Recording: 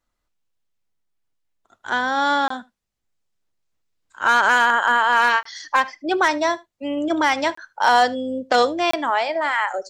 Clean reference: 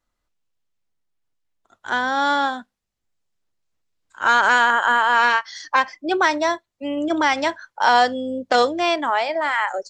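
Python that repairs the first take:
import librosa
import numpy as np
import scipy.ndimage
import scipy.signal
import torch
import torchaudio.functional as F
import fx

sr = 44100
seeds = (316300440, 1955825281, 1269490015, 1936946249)

y = fx.fix_declip(x, sr, threshold_db=-7.0)
y = fx.fix_interpolate(y, sr, at_s=(2.48, 5.43, 7.55, 8.91), length_ms=24.0)
y = fx.fix_echo_inverse(y, sr, delay_ms=77, level_db=-23.0)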